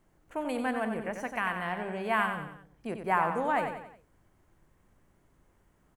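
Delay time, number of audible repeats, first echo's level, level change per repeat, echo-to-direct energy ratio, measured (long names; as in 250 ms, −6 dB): 91 ms, 4, −7.0 dB, −7.0 dB, −6.0 dB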